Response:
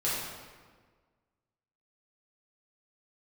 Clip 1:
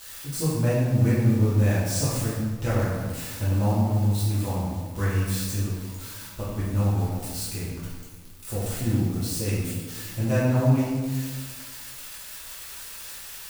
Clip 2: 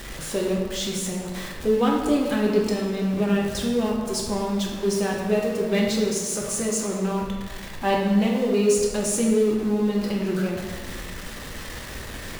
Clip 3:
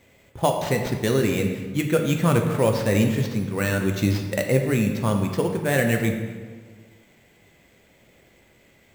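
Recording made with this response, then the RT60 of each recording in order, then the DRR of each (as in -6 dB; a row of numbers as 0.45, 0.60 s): 1; 1.5, 1.5, 1.5 s; -9.5, -2.0, 3.0 dB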